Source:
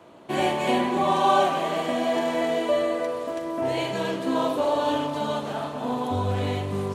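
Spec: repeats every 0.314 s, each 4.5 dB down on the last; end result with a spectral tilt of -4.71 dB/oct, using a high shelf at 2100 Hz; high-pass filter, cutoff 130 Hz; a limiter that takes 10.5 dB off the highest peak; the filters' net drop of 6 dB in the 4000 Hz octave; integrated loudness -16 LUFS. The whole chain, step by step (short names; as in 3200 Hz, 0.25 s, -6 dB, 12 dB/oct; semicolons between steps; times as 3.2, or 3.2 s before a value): HPF 130 Hz; high shelf 2100 Hz -3.5 dB; bell 4000 Hz -5 dB; limiter -17.5 dBFS; feedback echo 0.314 s, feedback 60%, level -4.5 dB; gain +9.5 dB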